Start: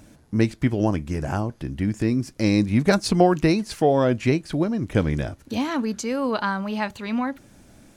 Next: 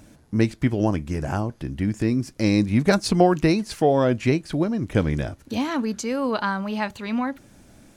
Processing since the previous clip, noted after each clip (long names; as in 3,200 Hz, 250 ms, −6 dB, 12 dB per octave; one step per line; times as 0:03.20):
no processing that can be heard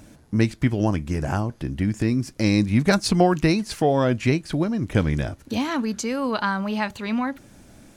dynamic equaliser 460 Hz, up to −4 dB, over −28 dBFS, Q 0.72
level +2 dB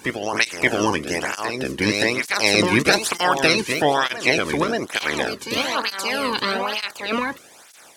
ceiling on every frequency bin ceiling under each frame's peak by 22 dB
on a send: backwards echo 574 ms −6 dB
on the sum: through-zero flanger with one copy inverted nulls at 1.1 Hz, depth 1.6 ms
level +4 dB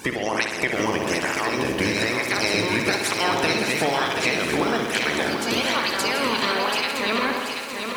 downward compressor 4 to 1, threshold −26 dBFS, peak gain reduction 12.5 dB
bucket-brigade delay 64 ms, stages 2,048, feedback 72%, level −7 dB
feedback echo at a low word length 734 ms, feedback 55%, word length 8 bits, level −6 dB
level +4 dB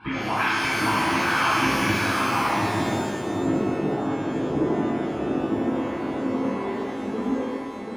phaser with its sweep stopped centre 1,900 Hz, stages 6
low-pass filter sweep 1,800 Hz → 410 Hz, 0:01.91–0:03.17
reverb with rising layers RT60 1.5 s, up +12 semitones, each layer −8 dB, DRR −10.5 dB
level −7 dB